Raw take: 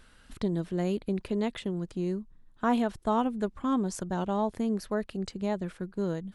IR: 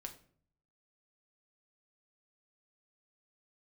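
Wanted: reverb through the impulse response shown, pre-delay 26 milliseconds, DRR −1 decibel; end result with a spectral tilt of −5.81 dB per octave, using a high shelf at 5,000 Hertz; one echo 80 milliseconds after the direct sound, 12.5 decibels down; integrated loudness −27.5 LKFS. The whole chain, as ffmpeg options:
-filter_complex "[0:a]highshelf=frequency=5000:gain=-5.5,aecho=1:1:80:0.237,asplit=2[link_01][link_02];[1:a]atrim=start_sample=2205,adelay=26[link_03];[link_02][link_03]afir=irnorm=-1:irlink=0,volume=4.5dB[link_04];[link_01][link_04]amix=inputs=2:normalize=0,volume=-0.5dB"

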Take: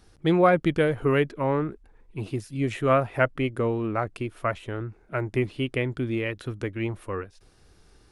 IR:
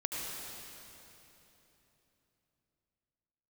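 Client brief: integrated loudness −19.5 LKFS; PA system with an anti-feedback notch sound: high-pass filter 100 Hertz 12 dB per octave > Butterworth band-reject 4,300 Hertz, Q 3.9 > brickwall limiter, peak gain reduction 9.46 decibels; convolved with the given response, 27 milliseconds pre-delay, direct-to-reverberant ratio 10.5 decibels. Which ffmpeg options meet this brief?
-filter_complex "[0:a]asplit=2[link_01][link_02];[1:a]atrim=start_sample=2205,adelay=27[link_03];[link_02][link_03]afir=irnorm=-1:irlink=0,volume=-14.5dB[link_04];[link_01][link_04]amix=inputs=2:normalize=0,highpass=100,asuperstop=centerf=4300:order=8:qfactor=3.9,volume=9.5dB,alimiter=limit=-6dB:level=0:latency=1"

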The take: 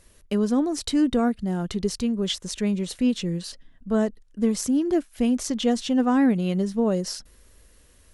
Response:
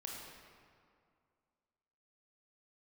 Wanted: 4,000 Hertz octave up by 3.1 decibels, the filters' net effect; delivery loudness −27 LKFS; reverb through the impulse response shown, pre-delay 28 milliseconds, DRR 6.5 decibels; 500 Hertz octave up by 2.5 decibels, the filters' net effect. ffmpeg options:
-filter_complex "[0:a]equalizer=frequency=500:width_type=o:gain=3,equalizer=frequency=4000:width_type=o:gain=4,asplit=2[link_01][link_02];[1:a]atrim=start_sample=2205,adelay=28[link_03];[link_02][link_03]afir=irnorm=-1:irlink=0,volume=-5dB[link_04];[link_01][link_04]amix=inputs=2:normalize=0,volume=-4.5dB"

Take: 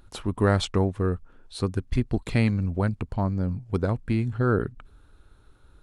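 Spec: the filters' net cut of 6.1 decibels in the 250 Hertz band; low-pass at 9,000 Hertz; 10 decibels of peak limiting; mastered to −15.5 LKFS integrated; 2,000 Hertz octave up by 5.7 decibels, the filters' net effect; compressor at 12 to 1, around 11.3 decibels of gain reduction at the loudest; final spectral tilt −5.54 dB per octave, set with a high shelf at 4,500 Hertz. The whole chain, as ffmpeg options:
ffmpeg -i in.wav -af "lowpass=9000,equalizer=frequency=250:width_type=o:gain=-8.5,equalizer=frequency=2000:width_type=o:gain=6.5,highshelf=frequency=4500:gain=6,acompressor=threshold=-28dB:ratio=12,volume=23dB,alimiter=limit=-4.5dB:level=0:latency=1" out.wav

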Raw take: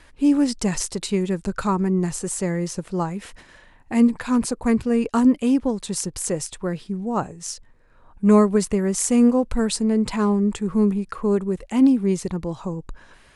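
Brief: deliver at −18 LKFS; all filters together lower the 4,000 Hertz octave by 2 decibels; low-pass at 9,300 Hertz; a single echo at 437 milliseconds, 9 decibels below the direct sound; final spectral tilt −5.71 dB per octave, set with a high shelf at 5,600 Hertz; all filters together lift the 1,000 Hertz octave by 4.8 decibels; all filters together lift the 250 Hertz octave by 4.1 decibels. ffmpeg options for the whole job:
ffmpeg -i in.wav -af "lowpass=9300,equalizer=frequency=250:width_type=o:gain=4.5,equalizer=frequency=1000:width_type=o:gain=5.5,equalizer=frequency=4000:width_type=o:gain=-4.5,highshelf=frequency=5600:gain=3.5,aecho=1:1:437:0.355,volume=-0.5dB" out.wav

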